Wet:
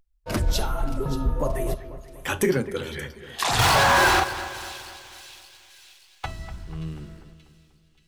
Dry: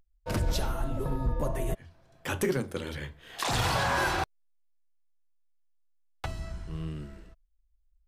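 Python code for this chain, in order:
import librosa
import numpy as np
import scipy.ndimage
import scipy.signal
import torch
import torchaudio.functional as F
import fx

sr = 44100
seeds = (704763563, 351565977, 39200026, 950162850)

y = fx.noise_reduce_blind(x, sr, reduce_db=6)
y = fx.power_curve(y, sr, exponent=0.5, at=(3.59, 4.2))
y = fx.echo_split(y, sr, split_hz=2500.0, low_ms=244, high_ms=579, feedback_pct=52, wet_db=-13.5)
y = y * librosa.db_to_amplitude(6.5)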